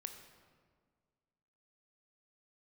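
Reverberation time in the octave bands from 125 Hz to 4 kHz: 2.1, 2.1, 1.9, 1.7, 1.3, 1.1 seconds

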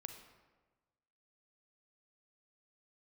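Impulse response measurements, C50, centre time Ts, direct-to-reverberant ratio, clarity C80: 7.0 dB, 24 ms, 6.0 dB, 9.0 dB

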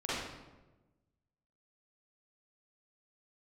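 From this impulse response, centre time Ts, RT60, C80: 94 ms, 1.1 s, 1.0 dB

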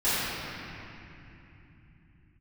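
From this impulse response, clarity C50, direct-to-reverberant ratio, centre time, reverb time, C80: −6.0 dB, −17.0 dB, 221 ms, 3.0 s, −4.0 dB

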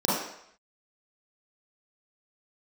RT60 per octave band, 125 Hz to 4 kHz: 0.55, 0.55, 0.70, 0.75, 0.75, 0.70 seconds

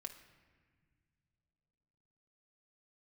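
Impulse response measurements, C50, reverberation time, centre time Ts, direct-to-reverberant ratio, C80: 10.0 dB, non-exponential decay, 16 ms, 4.0 dB, 12.0 dB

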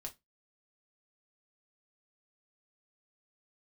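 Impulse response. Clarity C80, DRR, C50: 29.5 dB, 2.5 dB, 19.5 dB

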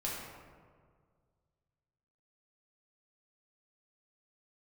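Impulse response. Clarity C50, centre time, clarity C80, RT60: 0.0 dB, 92 ms, 2.0 dB, 1.8 s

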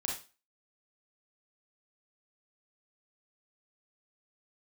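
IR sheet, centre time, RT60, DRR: 33 ms, 0.30 s, −1.5 dB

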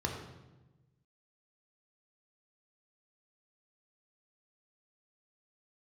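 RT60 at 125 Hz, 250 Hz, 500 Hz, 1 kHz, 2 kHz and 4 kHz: 1.7, 1.5, 1.2, 1.0, 0.90, 0.80 seconds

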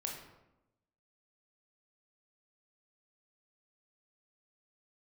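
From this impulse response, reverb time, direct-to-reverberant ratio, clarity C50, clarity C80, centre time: 0.95 s, 0.0 dB, 4.0 dB, 7.0 dB, 41 ms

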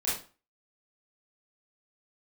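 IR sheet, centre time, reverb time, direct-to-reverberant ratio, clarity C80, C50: 45 ms, 0.35 s, −9.5 dB, 9.5 dB, 3.0 dB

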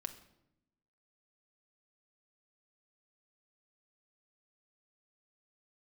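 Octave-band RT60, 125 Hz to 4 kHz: 1.2, 1.2, 0.90, 0.75, 0.65, 0.60 seconds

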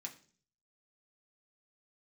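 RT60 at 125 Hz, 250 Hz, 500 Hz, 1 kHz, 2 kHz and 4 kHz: 0.75, 0.60, 0.50, 0.40, 0.40, 0.50 seconds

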